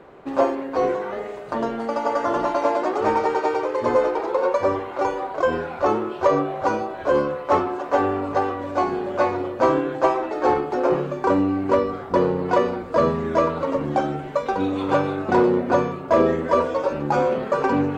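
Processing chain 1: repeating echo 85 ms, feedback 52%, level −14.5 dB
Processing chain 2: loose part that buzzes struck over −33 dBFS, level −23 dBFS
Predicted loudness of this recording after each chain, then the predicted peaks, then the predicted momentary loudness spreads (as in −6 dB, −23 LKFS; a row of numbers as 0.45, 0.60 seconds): −22.0, −22.0 LKFS; −6.0, −5.5 dBFS; 5, 5 LU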